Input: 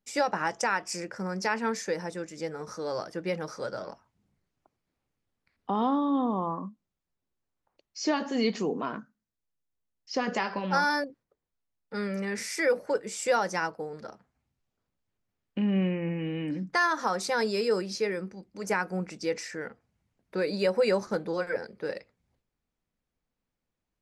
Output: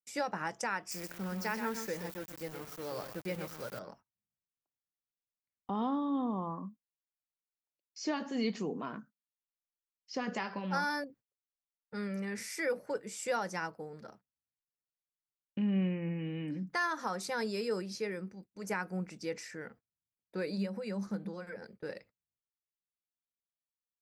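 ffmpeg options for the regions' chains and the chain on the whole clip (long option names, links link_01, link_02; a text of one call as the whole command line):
ffmpeg -i in.wav -filter_complex "[0:a]asettb=1/sr,asplit=3[link_01][link_02][link_03];[link_01]atrim=end=0.914[link_04];[link_02]atrim=start=0.91:end=3.79,asetpts=PTS-STARTPTS,afade=type=in:duration=0.004:curve=qsin,afade=type=out:start_time=2.876:duration=0.004:curve=qsin,aecho=1:1:125:0.398,atrim=end_sample=127008,aeval=exprs='val(0)*gte(abs(val(0)),0.0126)':channel_layout=same[link_05];[link_03]atrim=start=3.786[link_06];[link_04][link_05]acrossfade=duration=0.004:curve1=hsin:curve2=qsin[link_07];[link_07][link_06]acrossfade=duration=0.004:curve1=qsin:curve2=hsin,asettb=1/sr,asplit=3[link_08][link_09][link_10];[link_08]atrim=end=20.574[link_11];[link_09]atrim=start=20.57:end=21.62,asetpts=PTS-STARTPTS,afade=type=in:duration=0.004:curve=qsin,afade=type=out:start_time=1.046:duration=0.004:curve=qsin,acompressor=threshold=-37dB:ratio=2:attack=3.2:release=140:knee=1:detection=peak,equalizer=frequency=200:width_type=o:width=0.22:gain=13.5[link_12];[link_10]atrim=start=21.616[link_13];[link_11][link_12]acrossfade=duration=0.004:curve1=hsin:curve2=qsin[link_14];[link_14][link_13]acrossfade=duration=0.004:curve1=qsin:curve2=hsin,aemphasis=mode=production:type=bsi,agate=range=-23dB:threshold=-50dB:ratio=16:detection=peak,bass=frequency=250:gain=14,treble=frequency=4000:gain=-8,volume=-8dB" out.wav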